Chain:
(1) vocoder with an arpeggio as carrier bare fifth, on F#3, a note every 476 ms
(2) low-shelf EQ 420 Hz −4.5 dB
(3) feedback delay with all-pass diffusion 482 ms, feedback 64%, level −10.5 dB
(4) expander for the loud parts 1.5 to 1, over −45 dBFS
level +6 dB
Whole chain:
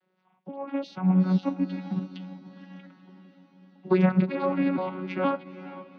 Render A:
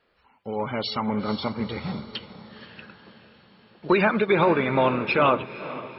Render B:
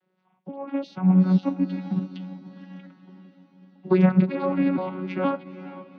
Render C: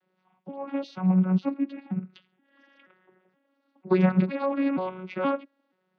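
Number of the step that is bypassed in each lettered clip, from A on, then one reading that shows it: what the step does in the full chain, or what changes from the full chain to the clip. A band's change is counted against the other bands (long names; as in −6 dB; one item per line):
1, 125 Hz band −11.5 dB
2, 125 Hz band +3.0 dB
3, change in momentary loudness spread −8 LU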